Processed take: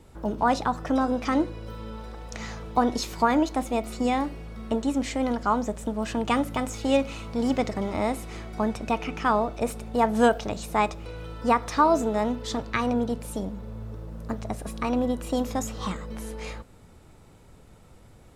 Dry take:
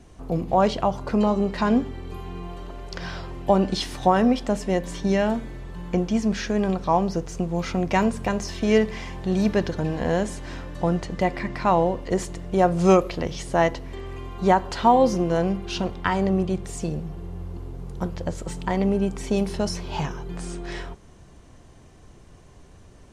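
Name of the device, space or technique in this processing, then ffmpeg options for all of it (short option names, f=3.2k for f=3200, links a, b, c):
nightcore: -af "asetrate=55566,aresample=44100,volume=-3dB"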